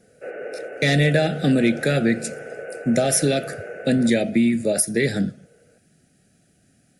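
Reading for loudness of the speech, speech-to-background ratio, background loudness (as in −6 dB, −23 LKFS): −20.5 LKFS, 14.5 dB, −35.0 LKFS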